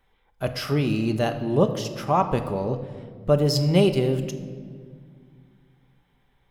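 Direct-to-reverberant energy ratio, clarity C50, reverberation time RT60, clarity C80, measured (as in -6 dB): 6.5 dB, 10.5 dB, 1.9 s, 12.0 dB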